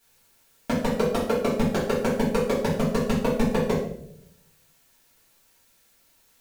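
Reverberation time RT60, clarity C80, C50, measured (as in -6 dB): 0.75 s, 7.5 dB, 4.0 dB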